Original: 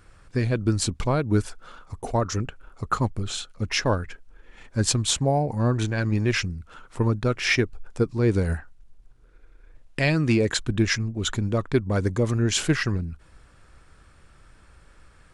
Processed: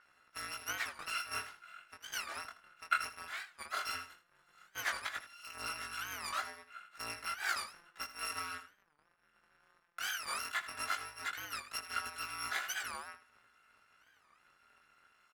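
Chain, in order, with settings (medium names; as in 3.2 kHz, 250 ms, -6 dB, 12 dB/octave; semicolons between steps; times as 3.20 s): bit-reversed sample order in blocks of 256 samples; 4.98–5.45 s: compressor with a negative ratio -30 dBFS, ratio -0.5; flange 0.34 Hz, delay 4.9 ms, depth 4.2 ms, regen -85%; band-pass filter 1.5 kHz, Q 2.5; chorus 0.16 Hz, delay 16.5 ms, depth 7.3 ms; on a send: feedback delay 80 ms, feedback 27%, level -14 dB; on the sum: warped record 45 rpm, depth 250 cents; trim +9.5 dB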